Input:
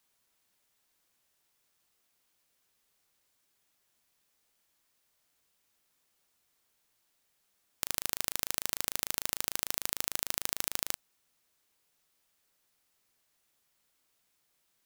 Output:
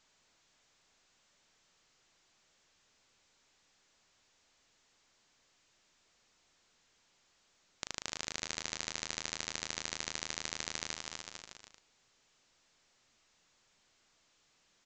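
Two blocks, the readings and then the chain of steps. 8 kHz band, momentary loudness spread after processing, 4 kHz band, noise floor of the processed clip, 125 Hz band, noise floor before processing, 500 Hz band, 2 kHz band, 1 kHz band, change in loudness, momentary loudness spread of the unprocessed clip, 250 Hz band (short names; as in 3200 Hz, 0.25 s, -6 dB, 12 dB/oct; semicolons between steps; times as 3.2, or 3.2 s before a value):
-4.5 dB, 10 LU, -1.0 dB, -72 dBFS, +0.5 dB, -76 dBFS, -1.0 dB, 0.0 dB, -2.5 dB, -6.5 dB, 3 LU, 0.0 dB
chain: bouncing-ball echo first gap 0.25 s, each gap 0.8×, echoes 5; gain -3 dB; A-law 128 kbps 16000 Hz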